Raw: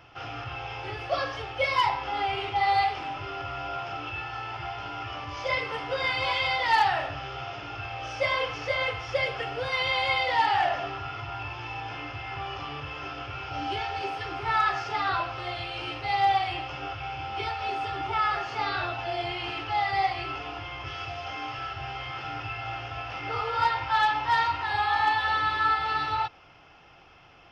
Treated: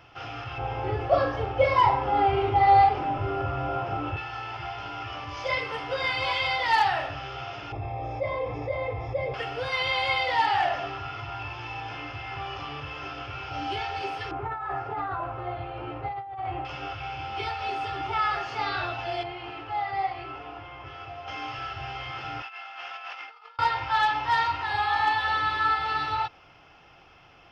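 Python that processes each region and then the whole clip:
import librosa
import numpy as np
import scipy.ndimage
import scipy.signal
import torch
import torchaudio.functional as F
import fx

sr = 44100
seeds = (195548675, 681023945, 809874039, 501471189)

y = fx.chain(x, sr, fx.tilt_shelf(db=10.0, hz=1500.0),
    fx.room_flutter(wall_m=6.5, rt60_s=0.25), at=(0.58, 4.17))
y = fx.chain(y, sr, fx.moving_average(points=30),
    fx.env_flatten(amount_pct=50), at=(7.72, 9.34))
y = fx.chain(y, sr, fx.lowpass(hz=1100.0, slope=12),
    fx.over_compress(threshold_db=-32.0, ratio=-1.0), at=(14.31, 16.65))
y = fx.chain(y, sr, fx.lowpass(hz=1100.0, slope=6),
    fx.low_shelf(hz=230.0, db=-6.5), at=(19.23, 21.28))
y = fx.chain(y, sr, fx.highpass(hz=1000.0, slope=12),
    fx.high_shelf(hz=2900.0, db=-5.0),
    fx.over_compress(threshold_db=-41.0, ratio=-0.5), at=(22.42, 23.59))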